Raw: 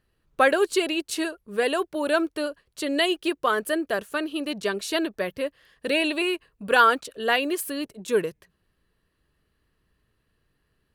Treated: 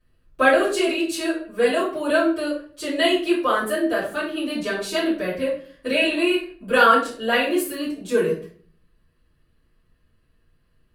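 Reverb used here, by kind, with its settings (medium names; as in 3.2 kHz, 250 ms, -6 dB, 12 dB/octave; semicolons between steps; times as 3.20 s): simulated room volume 48 m³, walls mixed, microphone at 2.7 m; trim -10.5 dB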